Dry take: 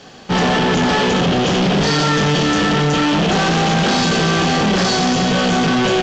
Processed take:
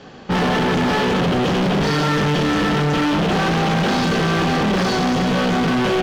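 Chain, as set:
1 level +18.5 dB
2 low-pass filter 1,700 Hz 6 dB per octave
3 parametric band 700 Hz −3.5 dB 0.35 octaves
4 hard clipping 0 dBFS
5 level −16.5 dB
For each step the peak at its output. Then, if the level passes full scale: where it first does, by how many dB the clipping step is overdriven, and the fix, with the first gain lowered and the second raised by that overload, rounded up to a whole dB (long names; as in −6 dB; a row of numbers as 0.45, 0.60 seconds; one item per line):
+8.5, +6.0, +7.0, 0.0, −16.5 dBFS
step 1, 7.0 dB
step 1 +11.5 dB, step 5 −9.5 dB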